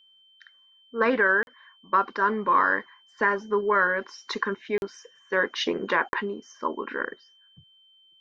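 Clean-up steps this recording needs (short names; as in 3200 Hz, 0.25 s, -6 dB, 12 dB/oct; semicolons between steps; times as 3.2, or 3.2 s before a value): notch 3100 Hz, Q 30; interpolate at 1.43/4.78/6.09, 41 ms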